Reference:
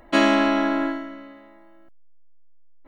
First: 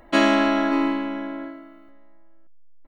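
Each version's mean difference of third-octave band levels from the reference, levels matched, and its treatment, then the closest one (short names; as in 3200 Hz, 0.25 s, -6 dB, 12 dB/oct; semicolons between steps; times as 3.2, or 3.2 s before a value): 3.0 dB: outdoor echo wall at 100 m, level -10 dB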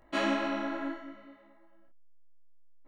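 1.5 dB: detuned doubles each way 29 cents; gain -7.5 dB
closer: second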